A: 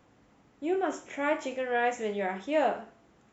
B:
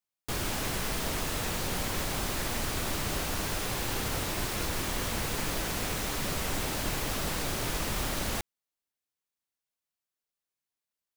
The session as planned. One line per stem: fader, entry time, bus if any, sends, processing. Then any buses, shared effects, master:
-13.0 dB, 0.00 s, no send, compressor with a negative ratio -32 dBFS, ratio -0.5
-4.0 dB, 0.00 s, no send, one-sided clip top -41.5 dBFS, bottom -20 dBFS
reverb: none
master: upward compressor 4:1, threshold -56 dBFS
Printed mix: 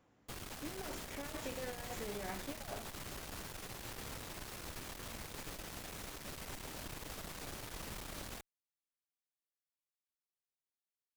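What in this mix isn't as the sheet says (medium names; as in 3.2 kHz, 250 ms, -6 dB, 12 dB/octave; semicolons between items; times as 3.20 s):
stem B -4.0 dB -> -11.5 dB; master: missing upward compressor 4:1, threshold -56 dBFS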